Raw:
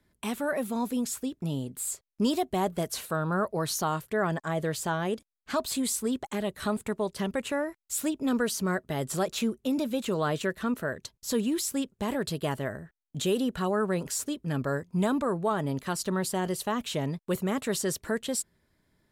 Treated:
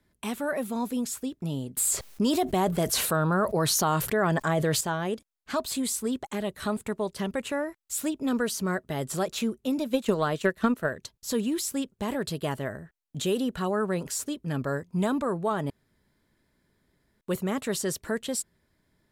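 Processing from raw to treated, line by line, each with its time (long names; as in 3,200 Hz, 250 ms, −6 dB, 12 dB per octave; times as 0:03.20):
0:01.77–0:04.81: envelope flattener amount 70%
0:09.66–0:10.91: transient designer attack +10 dB, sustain −5 dB
0:15.70–0:17.21: fill with room tone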